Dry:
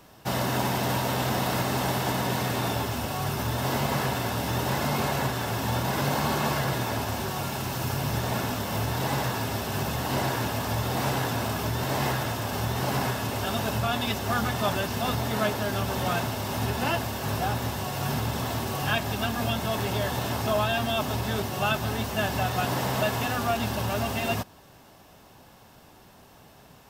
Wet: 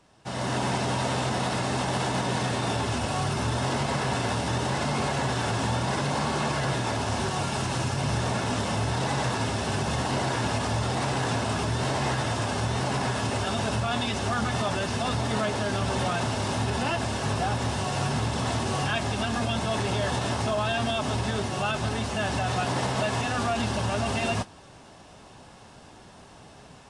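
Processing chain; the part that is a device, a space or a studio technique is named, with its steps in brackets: low-bitrate web radio (AGC gain up to 11.5 dB; limiter -10 dBFS, peak gain reduction 7 dB; gain -7.5 dB; AAC 48 kbps 22050 Hz)

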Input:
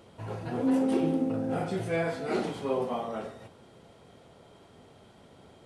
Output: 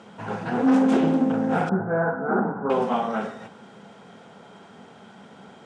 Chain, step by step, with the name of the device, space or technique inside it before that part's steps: full-range speaker at full volume (Doppler distortion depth 0.37 ms; speaker cabinet 190–8100 Hz, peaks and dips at 200 Hz +10 dB, 330 Hz -6 dB, 590 Hz -4 dB, 830 Hz +4 dB, 1500 Hz +7 dB, 4300 Hz -5 dB); 1.69–2.7 Chebyshev low-pass 1500 Hz, order 5; gain +8 dB

